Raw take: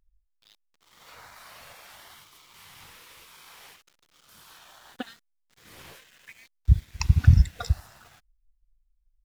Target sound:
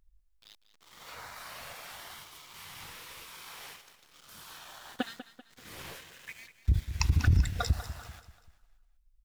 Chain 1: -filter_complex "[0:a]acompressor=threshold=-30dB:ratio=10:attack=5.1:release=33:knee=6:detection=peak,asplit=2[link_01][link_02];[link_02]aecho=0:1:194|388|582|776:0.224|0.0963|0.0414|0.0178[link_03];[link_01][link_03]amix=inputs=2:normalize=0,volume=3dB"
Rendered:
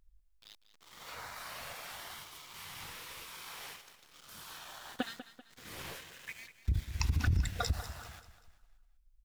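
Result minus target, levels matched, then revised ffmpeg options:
downward compressor: peak gain reduction +6.5 dB
-filter_complex "[0:a]acompressor=threshold=-23dB:ratio=10:attack=5.1:release=33:knee=6:detection=peak,asplit=2[link_01][link_02];[link_02]aecho=0:1:194|388|582|776:0.224|0.0963|0.0414|0.0178[link_03];[link_01][link_03]amix=inputs=2:normalize=0,volume=3dB"

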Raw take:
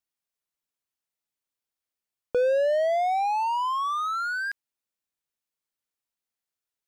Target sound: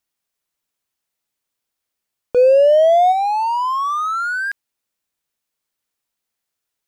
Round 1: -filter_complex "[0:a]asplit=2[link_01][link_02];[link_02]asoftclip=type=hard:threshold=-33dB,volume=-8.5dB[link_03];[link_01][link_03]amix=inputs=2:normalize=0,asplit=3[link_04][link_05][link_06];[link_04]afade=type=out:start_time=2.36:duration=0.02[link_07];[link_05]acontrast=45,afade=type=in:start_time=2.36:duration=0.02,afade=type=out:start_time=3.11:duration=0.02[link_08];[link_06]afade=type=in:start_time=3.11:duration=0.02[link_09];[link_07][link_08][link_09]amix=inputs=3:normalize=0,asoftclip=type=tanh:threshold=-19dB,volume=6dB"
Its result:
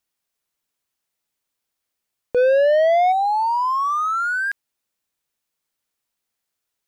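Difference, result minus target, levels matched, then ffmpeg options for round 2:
soft clipping: distortion +14 dB
-filter_complex "[0:a]asplit=2[link_01][link_02];[link_02]asoftclip=type=hard:threshold=-33dB,volume=-8.5dB[link_03];[link_01][link_03]amix=inputs=2:normalize=0,asplit=3[link_04][link_05][link_06];[link_04]afade=type=out:start_time=2.36:duration=0.02[link_07];[link_05]acontrast=45,afade=type=in:start_time=2.36:duration=0.02,afade=type=out:start_time=3.11:duration=0.02[link_08];[link_06]afade=type=in:start_time=3.11:duration=0.02[link_09];[link_07][link_08][link_09]amix=inputs=3:normalize=0,asoftclip=type=tanh:threshold=-9.5dB,volume=6dB"

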